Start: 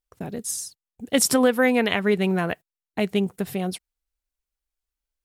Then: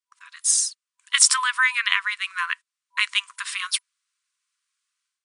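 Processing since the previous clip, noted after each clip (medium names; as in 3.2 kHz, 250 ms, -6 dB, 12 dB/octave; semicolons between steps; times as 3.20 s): FFT band-pass 980–10000 Hz; level rider gain up to 15 dB; trim -1 dB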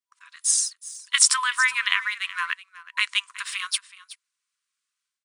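delay 372 ms -16 dB; in parallel at -10 dB: crossover distortion -36.5 dBFS; on the sum: trim -3.5 dB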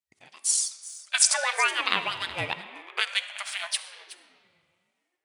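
reverberation RT60 2.9 s, pre-delay 10 ms, DRR 10 dB; ring modulator with a swept carrier 660 Hz, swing 40%, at 0.43 Hz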